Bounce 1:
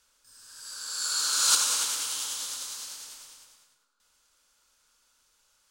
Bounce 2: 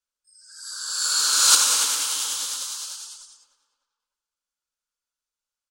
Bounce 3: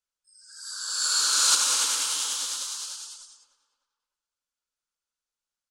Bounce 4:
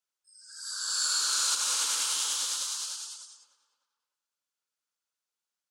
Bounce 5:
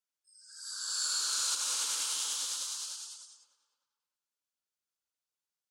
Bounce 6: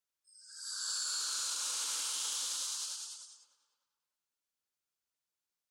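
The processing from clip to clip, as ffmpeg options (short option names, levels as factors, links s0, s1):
-filter_complex "[0:a]afftdn=nr=29:nf=-51,asplit=2[s0][s1];[s1]adelay=301,lowpass=f=2300:p=1,volume=0.178,asplit=2[s2][s3];[s3]adelay=301,lowpass=f=2300:p=1,volume=0.43,asplit=2[s4][s5];[s5]adelay=301,lowpass=f=2300:p=1,volume=0.43,asplit=2[s6][s7];[s7]adelay=301,lowpass=f=2300:p=1,volume=0.43[s8];[s0][s2][s4][s6][s8]amix=inputs=5:normalize=0,volume=2.11"
-filter_complex "[0:a]lowpass=11000,asplit=2[s0][s1];[s1]alimiter=limit=0.251:level=0:latency=1:release=264,volume=1.26[s2];[s0][s2]amix=inputs=2:normalize=0,volume=0.376"
-af "highpass=f=310:p=1,acompressor=threshold=0.0562:ratio=5"
-af "equalizer=f=1400:t=o:w=1.8:g=-2.5,volume=0.631"
-af "alimiter=level_in=1.5:limit=0.0631:level=0:latency=1:release=19,volume=0.668"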